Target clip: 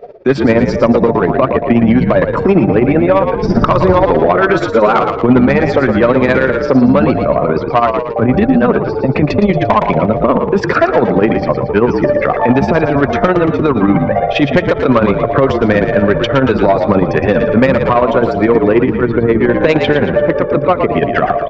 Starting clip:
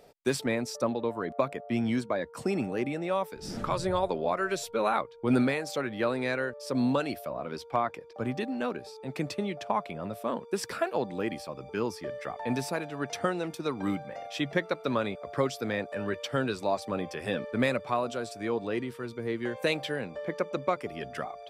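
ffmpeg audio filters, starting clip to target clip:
-filter_complex "[0:a]afftdn=nr=13:nf=-47,lowpass=1.9k,bandreject=f=830:w=12,acompressor=threshold=-43dB:ratio=1.5,tremolo=f=15:d=0.74,aresample=16000,asoftclip=type=tanh:threshold=-31.5dB,aresample=44100,asplit=7[a][b][c][d][e][f][g];[b]adelay=115,afreqshift=-47,volume=-8dB[h];[c]adelay=230,afreqshift=-94,volume=-14.4dB[i];[d]adelay=345,afreqshift=-141,volume=-20.8dB[j];[e]adelay=460,afreqshift=-188,volume=-27.1dB[k];[f]adelay=575,afreqshift=-235,volume=-33.5dB[l];[g]adelay=690,afreqshift=-282,volume=-39.9dB[m];[a][h][i][j][k][l][m]amix=inputs=7:normalize=0,alimiter=level_in=33.5dB:limit=-1dB:release=50:level=0:latency=1,volume=-1dB"

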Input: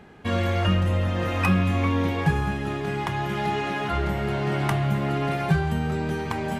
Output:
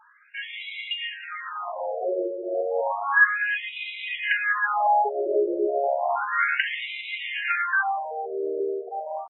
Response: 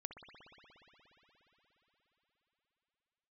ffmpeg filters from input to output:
-af "adynamicequalizer=threshold=0.00501:dfrequency=1600:dqfactor=6.8:tfrequency=1600:tqfactor=6.8:attack=5:release=100:ratio=0.375:range=2.5:mode=boostabove:tftype=bell,dynaudnorm=f=220:g=13:m=14dB,atempo=0.71,aphaser=in_gain=1:out_gain=1:delay=1.7:decay=0.31:speed=0.93:type=sinusoidal,afftfilt=real='re*between(b*sr/1024,450*pow(2900/450,0.5+0.5*sin(2*PI*0.32*pts/sr))/1.41,450*pow(2900/450,0.5+0.5*sin(2*PI*0.32*pts/sr))*1.41)':imag='im*between(b*sr/1024,450*pow(2900/450,0.5+0.5*sin(2*PI*0.32*pts/sr))/1.41,450*pow(2900/450,0.5+0.5*sin(2*PI*0.32*pts/sr))*1.41)':win_size=1024:overlap=0.75,volume=1.5dB"

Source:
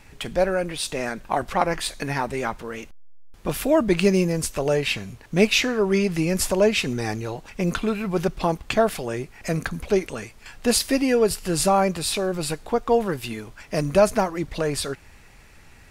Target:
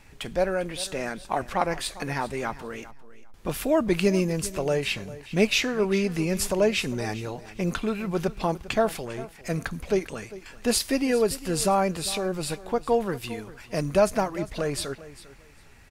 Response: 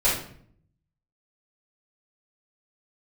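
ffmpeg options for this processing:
-filter_complex "[0:a]asplit=3[a][b][c];[a]afade=t=out:st=9.04:d=0.02[d];[b]aeval=exprs='(tanh(17.8*val(0)+0.5)-tanh(0.5))/17.8':c=same,afade=t=in:st=9.04:d=0.02,afade=t=out:st=9.48:d=0.02[e];[c]afade=t=in:st=9.48:d=0.02[f];[d][e][f]amix=inputs=3:normalize=0,aecho=1:1:400|800:0.141|0.0268,volume=-3.5dB"

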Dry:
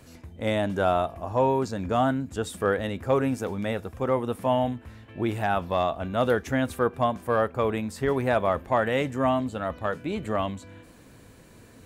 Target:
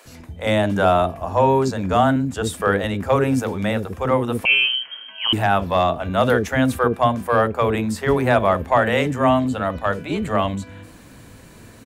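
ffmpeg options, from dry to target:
-filter_complex "[0:a]acrossover=split=430[a][b];[a]adelay=50[c];[c][b]amix=inputs=2:normalize=0,asettb=1/sr,asplit=3[d][e][f];[d]atrim=end=4.454[g];[e]atrim=start=4.45:end=5.33,asetpts=PTS-STARTPTS,afade=t=in:d=0.004:c=qsin,afade=t=out:st=0.876:d=0.004:c=qsin,lowpass=f=2.8k:t=q:w=0.5098,lowpass=f=2.8k:t=q:w=0.6013,lowpass=f=2.8k:t=q:w=0.9,lowpass=f=2.8k:t=q:w=2.563,afreqshift=-3300[h];[f]atrim=start=5.326[i];[g][h]acrossfade=d=0.004:c1=hsin:c2=qsin[j];[j][i]acrossfade=d=0.004:c1=qsin:c2=hsin,volume=8dB"

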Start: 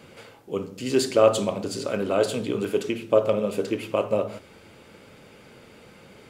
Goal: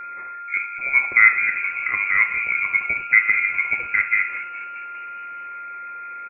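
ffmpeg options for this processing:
-filter_complex "[0:a]lowpass=f=2.2k:t=q:w=0.5098,lowpass=f=2.2k:t=q:w=0.6013,lowpass=f=2.2k:t=q:w=0.9,lowpass=f=2.2k:t=q:w=2.563,afreqshift=-2600,asplit=7[a][b][c][d][e][f][g];[b]adelay=208,afreqshift=86,volume=-14dB[h];[c]adelay=416,afreqshift=172,volume=-19.2dB[i];[d]adelay=624,afreqshift=258,volume=-24.4dB[j];[e]adelay=832,afreqshift=344,volume=-29.6dB[k];[f]adelay=1040,afreqshift=430,volume=-34.8dB[l];[g]adelay=1248,afreqshift=516,volume=-40dB[m];[a][h][i][j][k][l][m]amix=inputs=7:normalize=0,aeval=exprs='val(0)+0.0178*sin(2*PI*1400*n/s)':c=same,volume=3.5dB"

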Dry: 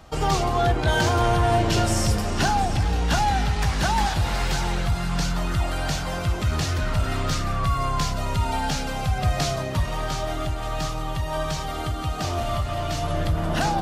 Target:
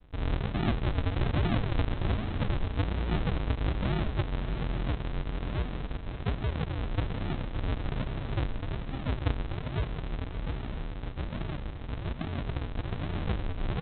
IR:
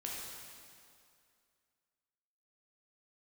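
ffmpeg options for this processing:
-af "aresample=8000,acrusher=samples=30:mix=1:aa=0.000001:lfo=1:lforange=30:lforate=1.2,aresample=44100,aecho=1:1:564:0.266,volume=-7.5dB"

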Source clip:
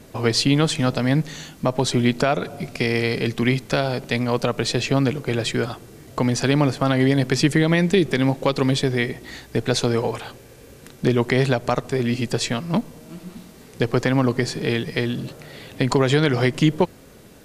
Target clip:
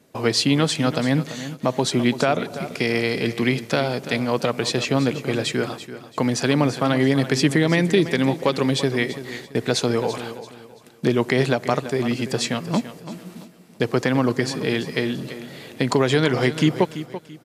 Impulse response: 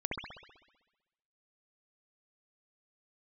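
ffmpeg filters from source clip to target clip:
-filter_complex "[0:a]highpass=140,agate=range=-11dB:threshold=-41dB:ratio=16:detection=peak,asplit=2[a][b];[b]aecho=0:1:336|672|1008:0.224|0.0694|0.0215[c];[a][c]amix=inputs=2:normalize=0"

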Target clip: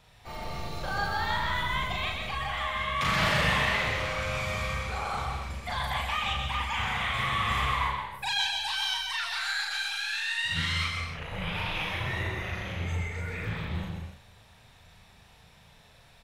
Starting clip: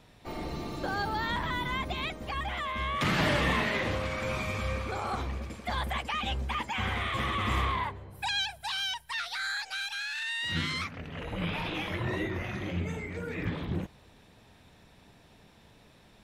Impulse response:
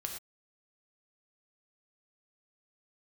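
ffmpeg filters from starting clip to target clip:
-filter_complex "[0:a]equalizer=f=300:w=1.2:g=-14.5,asplit=2[a][b];[b]adelay=37,volume=-2.5dB[c];[a][c]amix=inputs=2:normalize=0,asplit=2[d][e];[1:a]atrim=start_sample=2205,asetrate=31311,aresample=44100,adelay=128[f];[e][f]afir=irnorm=-1:irlink=0,volume=-4.5dB[g];[d][g]amix=inputs=2:normalize=0"

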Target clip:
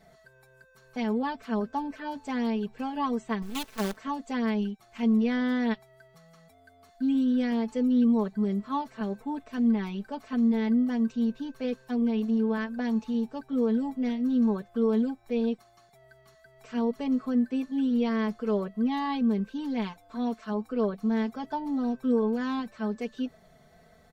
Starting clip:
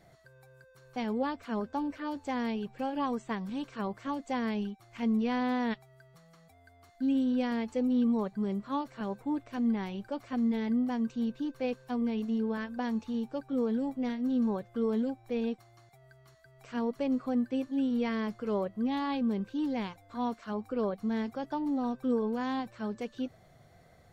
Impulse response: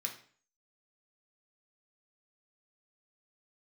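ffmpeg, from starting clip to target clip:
-filter_complex "[0:a]asettb=1/sr,asplit=3[a][b][c];[a]atrim=end=3.424[d];[b]atrim=start=3.42:end=3.97,asetpts=PTS-STARTPTS,afade=t=in:d=0.004:c=qsin,afade=t=out:st=0.546:d=0.004:c=qsin,acrusher=bits=6:dc=4:mix=0:aa=0.000001[e];[c]atrim=start=3.966[f];[d][e]acrossfade=d=0.004:c1=hsin:c2=qsin[g];[g][f]acrossfade=d=0.004:c1=qsin:c2=hsin,aecho=1:1:4.6:0.82"

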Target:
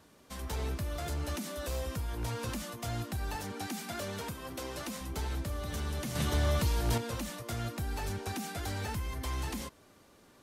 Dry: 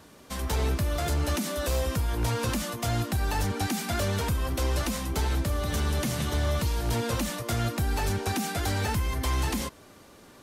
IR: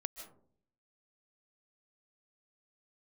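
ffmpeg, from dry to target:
-filter_complex "[0:a]asettb=1/sr,asplit=3[a][b][c];[a]atrim=end=3.364[d];[b]atrim=start=3.36:end=5.01,asetpts=PTS-STARTPTS,afade=t=in:d=0.004:c=qsin,afade=t=out:st=1.646:d=0.004:c=qsin,highpass=140[e];[c]atrim=start=5.006[f];[d][e]acrossfade=d=0.004:c1=hsin:c2=qsin[g];[g][f]acrossfade=d=0.004:c1=qsin:c2=hsin,asettb=1/sr,asplit=3[h][i][j];[h]atrim=end=6.154[k];[i]atrim=start=6.15:end=6.98,asetpts=PTS-STARTPTS,afade=t=in:d=0.004:c=qsin,afade=t=out:st=0.826:d=0.004:c=qsin,acontrast=69[l];[j]atrim=start=6.976[m];[k][l]acrossfade=d=0.004:c1=hsin:c2=qsin[n];[n][m]acrossfade=d=0.004:c1=qsin:c2=hsin,volume=-8.5dB"

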